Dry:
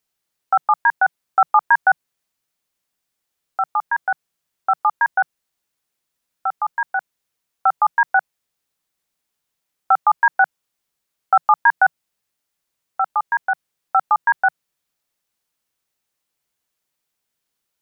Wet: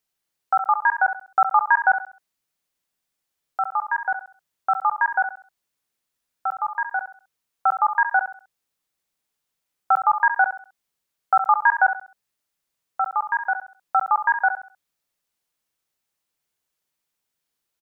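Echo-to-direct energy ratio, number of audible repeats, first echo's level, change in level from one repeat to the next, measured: −9.0 dB, 3, −9.5 dB, −9.5 dB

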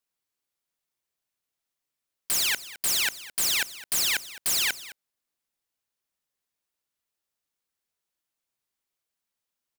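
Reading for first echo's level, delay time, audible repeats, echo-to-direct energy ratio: −17.0 dB, 211 ms, 1, −17.0 dB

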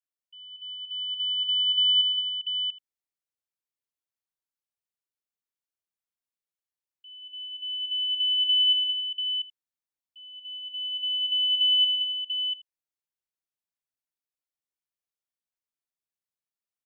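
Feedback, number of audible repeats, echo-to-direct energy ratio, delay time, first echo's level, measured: repeats not evenly spaced, 5, −2.0 dB, 69 ms, −17.0 dB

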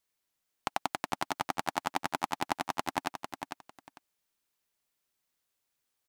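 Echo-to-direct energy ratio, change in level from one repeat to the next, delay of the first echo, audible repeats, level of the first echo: −7.0 dB, −14.0 dB, 450 ms, 2, −7.0 dB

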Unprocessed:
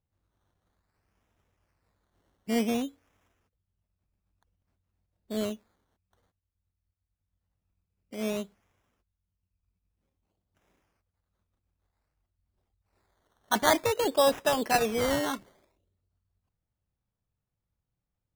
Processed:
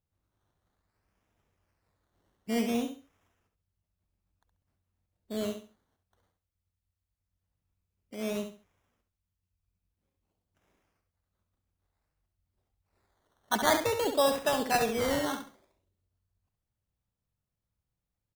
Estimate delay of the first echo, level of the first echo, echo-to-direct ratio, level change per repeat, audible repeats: 68 ms, −7.5 dB, −7.0 dB, −11.5 dB, 3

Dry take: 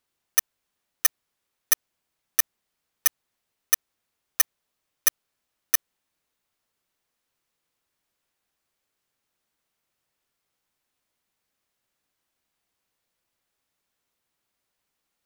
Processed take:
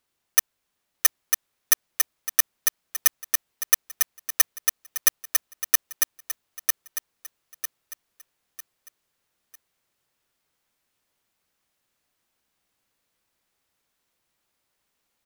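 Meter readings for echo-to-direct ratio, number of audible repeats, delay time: −3.5 dB, 4, 950 ms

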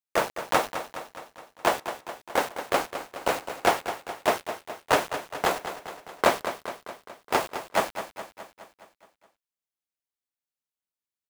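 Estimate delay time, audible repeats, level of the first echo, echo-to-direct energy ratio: 209 ms, 6, −10.5 dB, −8.5 dB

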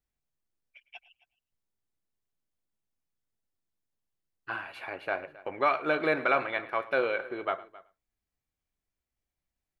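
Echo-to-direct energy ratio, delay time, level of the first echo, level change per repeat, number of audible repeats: −16.5 dB, 108 ms, −19.0 dB, repeats not evenly spaced, 2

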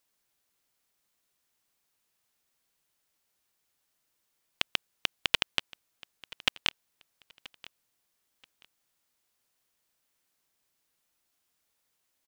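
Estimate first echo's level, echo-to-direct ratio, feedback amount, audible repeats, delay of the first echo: −21.0 dB, −20.5 dB, 25%, 2, 980 ms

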